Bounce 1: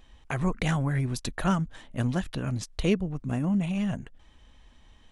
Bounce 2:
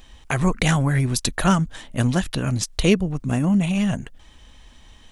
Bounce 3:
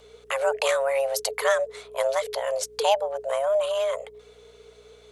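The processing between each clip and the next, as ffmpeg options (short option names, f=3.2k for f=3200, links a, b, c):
-af "highshelf=f=3.6k:g=8,volume=7dB"
-af "afreqshift=410,aeval=exprs='val(0)+0.00178*(sin(2*PI*60*n/s)+sin(2*PI*2*60*n/s)/2+sin(2*PI*3*60*n/s)/3+sin(2*PI*4*60*n/s)/4+sin(2*PI*5*60*n/s)/5)':c=same,volume=-4.5dB"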